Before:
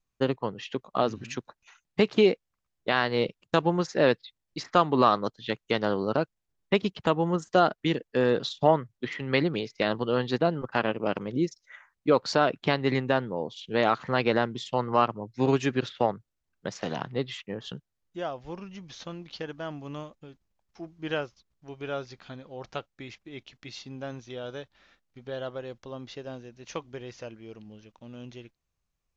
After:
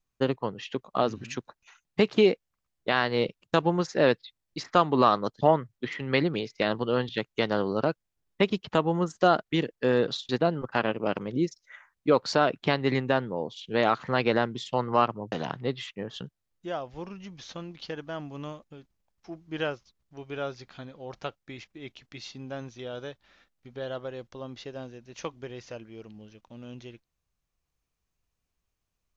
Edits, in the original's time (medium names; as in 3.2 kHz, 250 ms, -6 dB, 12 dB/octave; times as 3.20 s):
8.61–10.29 s: move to 5.41 s
15.32–16.83 s: delete